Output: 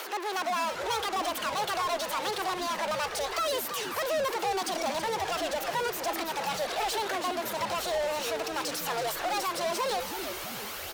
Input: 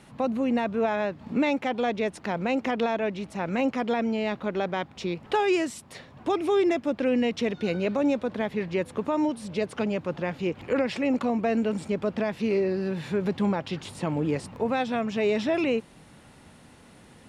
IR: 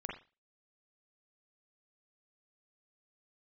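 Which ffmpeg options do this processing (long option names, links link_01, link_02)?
-filter_complex "[0:a]equalizer=frequency=8500:width=0.87:gain=10.5,asetrate=69678,aresample=44100,flanger=delay=0:depth=1.9:regen=44:speed=0.82:shape=triangular,asoftclip=type=tanh:threshold=-25.5dB,asplit=2[link_01][link_02];[link_02]highpass=frequency=720:poles=1,volume=29dB,asoftclip=type=tanh:threshold=-25.5dB[link_03];[link_01][link_03]amix=inputs=2:normalize=0,lowpass=frequency=7200:poles=1,volume=-6dB,highpass=frequency=440:width=0.5412,highpass=frequency=440:width=1.3066,asplit=2[link_04][link_05];[link_05]asplit=5[link_06][link_07][link_08][link_09][link_10];[link_06]adelay=327,afreqshift=-150,volume=-8dB[link_11];[link_07]adelay=654,afreqshift=-300,volume=-14.6dB[link_12];[link_08]adelay=981,afreqshift=-450,volume=-21.1dB[link_13];[link_09]adelay=1308,afreqshift=-600,volume=-27.7dB[link_14];[link_10]adelay=1635,afreqshift=-750,volume=-34.2dB[link_15];[link_11][link_12][link_13][link_14][link_15]amix=inputs=5:normalize=0[link_16];[link_04][link_16]amix=inputs=2:normalize=0"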